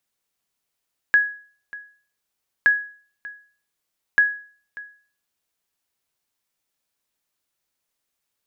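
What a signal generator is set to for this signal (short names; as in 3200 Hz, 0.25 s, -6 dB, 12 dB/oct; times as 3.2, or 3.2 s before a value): sonar ping 1670 Hz, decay 0.44 s, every 1.52 s, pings 3, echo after 0.59 s, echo -20 dB -8.5 dBFS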